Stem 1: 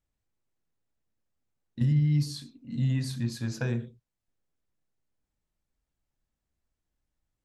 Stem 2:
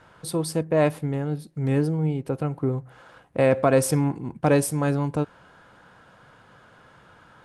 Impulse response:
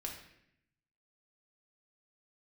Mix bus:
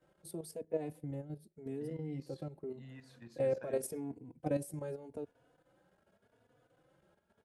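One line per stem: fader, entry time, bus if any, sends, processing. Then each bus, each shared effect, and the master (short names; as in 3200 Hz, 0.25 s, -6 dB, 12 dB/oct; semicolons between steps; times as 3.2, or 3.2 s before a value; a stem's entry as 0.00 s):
-9.0 dB, 0.00 s, no send, dry
+2.0 dB, 0.00 s, no send, EQ curve 150 Hz 0 dB, 430 Hz -7 dB, 660 Hz -11 dB, 1100 Hz -24 dB, 11000 Hz +2 dB; endless flanger 3.4 ms +0.87 Hz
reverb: off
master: three-band isolator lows -16 dB, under 340 Hz, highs -12 dB, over 2500 Hz; level quantiser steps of 10 dB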